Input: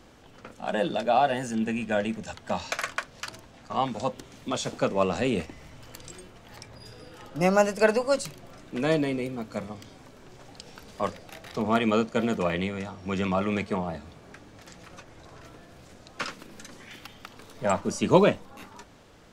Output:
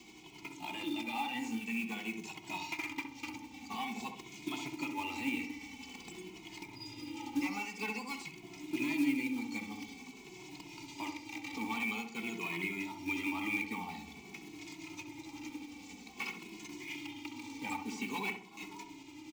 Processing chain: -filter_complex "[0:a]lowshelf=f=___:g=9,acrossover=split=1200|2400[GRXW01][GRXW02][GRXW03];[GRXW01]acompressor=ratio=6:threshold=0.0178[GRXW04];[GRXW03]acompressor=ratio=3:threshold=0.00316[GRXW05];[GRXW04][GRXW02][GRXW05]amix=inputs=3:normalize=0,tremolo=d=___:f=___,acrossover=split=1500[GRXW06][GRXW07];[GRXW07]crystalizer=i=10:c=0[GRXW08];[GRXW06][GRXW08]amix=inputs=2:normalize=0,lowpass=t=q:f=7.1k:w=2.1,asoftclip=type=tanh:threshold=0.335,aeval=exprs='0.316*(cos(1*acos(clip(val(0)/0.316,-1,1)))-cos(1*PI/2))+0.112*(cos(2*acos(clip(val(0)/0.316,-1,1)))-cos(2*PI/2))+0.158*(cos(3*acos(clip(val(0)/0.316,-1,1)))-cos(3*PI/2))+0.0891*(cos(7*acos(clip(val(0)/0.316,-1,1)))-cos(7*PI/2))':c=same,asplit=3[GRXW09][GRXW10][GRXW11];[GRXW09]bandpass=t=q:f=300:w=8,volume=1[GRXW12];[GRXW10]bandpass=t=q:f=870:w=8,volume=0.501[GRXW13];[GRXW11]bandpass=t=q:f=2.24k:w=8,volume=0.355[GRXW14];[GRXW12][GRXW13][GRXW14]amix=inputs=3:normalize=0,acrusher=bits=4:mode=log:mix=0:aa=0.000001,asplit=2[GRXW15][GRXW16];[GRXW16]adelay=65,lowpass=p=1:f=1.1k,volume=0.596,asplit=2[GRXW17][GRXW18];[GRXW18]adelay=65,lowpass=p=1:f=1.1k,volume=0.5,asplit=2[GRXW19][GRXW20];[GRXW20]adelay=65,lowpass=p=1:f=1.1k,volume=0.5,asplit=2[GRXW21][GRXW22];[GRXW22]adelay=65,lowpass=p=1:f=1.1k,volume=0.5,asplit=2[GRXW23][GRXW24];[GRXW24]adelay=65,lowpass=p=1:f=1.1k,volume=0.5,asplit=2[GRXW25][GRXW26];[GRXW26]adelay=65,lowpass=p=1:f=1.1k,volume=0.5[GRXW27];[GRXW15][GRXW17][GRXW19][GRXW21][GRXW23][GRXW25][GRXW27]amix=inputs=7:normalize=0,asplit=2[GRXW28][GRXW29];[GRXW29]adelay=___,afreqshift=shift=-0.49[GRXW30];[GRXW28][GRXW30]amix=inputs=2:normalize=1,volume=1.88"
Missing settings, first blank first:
110, 0.35, 11, 2.3